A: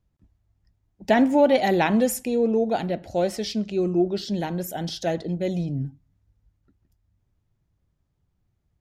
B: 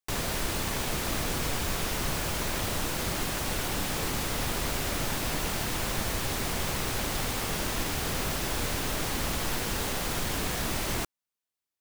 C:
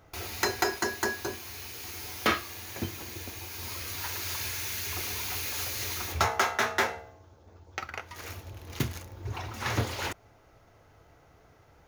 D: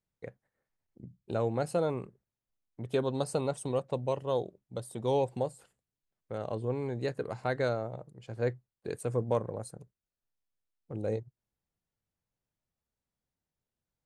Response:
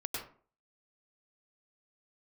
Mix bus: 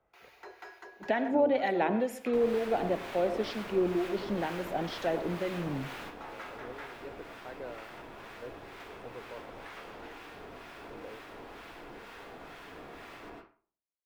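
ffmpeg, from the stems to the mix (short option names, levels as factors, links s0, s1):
-filter_complex "[0:a]volume=0.944,asplit=3[s0][s1][s2];[s1]volume=0.158[s3];[1:a]adelay=2250,volume=0.562,asplit=2[s4][s5];[s5]volume=0.422[s6];[2:a]highpass=f=380:w=0.5412,highpass=f=380:w=1.3066,asoftclip=type=tanh:threshold=0.0596,volume=0.211,asplit=2[s7][s8];[s8]volume=0.211[s9];[3:a]volume=0.282[s10];[s2]apad=whole_len=619888[s11];[s4][s11]sidechaingate=range=0.0224:threshold=0.00178:ratio=16:detection=peak[s12];[s12][s10]amix=inputs=2:normalize=0,alimiter=level_in=1.68:limit=0.0631:level=0:latency=1:release=213,volume=0.596,volume=1[s13];[s0][s7]amix=inputs=2:normalize=0,acompressor=threshold=0.0708:ratio=6,volume=1[s14];[4:a]atrim=start_sample=2205[s15];[s3][s6][s9]amix=inputs=3:normalize=0[s16];[s16][s15]afir=irnorm=-1:irlink=0[s17];[s13][s14][s17]amix=inputs=3:normalize=0,acrossover=split=240 3100:gain=0.224 1 0.126[s18][s19][s20];[s18][s19][s20]amix=inputs=3:normalize=0,acrossover=split=1000[s21][s22];[s21]aeval=exprs='val(0)*(1-0.5/2+0.5/2*cos(2*PI*2.1*n/s))':c=same[s23];[s22]aeval=exprs='val(0)*(1-0.5/2-0.5/2*cos(2*PI*2.1*n/s))':c=same[s24];[s23][s24]amix=inputs=2:normalize=0"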